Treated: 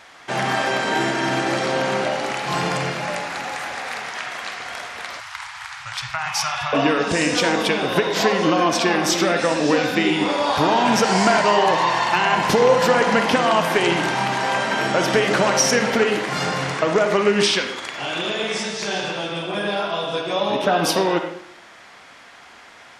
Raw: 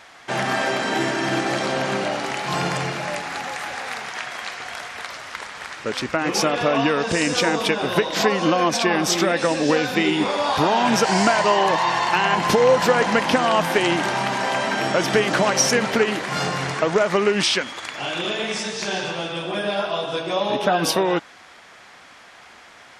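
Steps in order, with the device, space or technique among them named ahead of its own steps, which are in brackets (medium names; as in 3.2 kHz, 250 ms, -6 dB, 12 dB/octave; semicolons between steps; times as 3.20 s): filtered reverb send (on a send: high-pass 220 Hz 12 dB/octave + low-pass 5.1 kHz 12 dB/octave + reverberation RT60 0.65 s, pre-delay 40 ms, DRR 5 dB); 5.20–6.73 s: on the sum: elliptic band-stop 130–820 Hz, stop band 50 dB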